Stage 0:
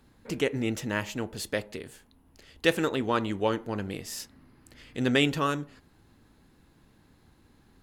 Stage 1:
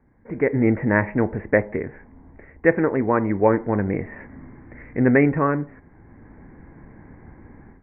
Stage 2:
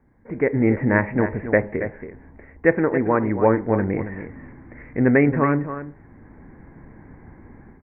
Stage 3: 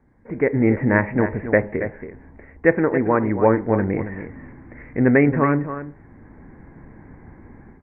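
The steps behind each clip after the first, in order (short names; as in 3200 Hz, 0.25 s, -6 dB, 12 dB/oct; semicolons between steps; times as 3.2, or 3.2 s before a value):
AGC gain up to 16 dB; steep low-pass 2200 Hz 96 dB/oct; bell 1300 Hz -7 dB 0.39 oct
echo 0.277 s -10.5 dB
gain +1 dB; AAC 64 kbps 22050 Hz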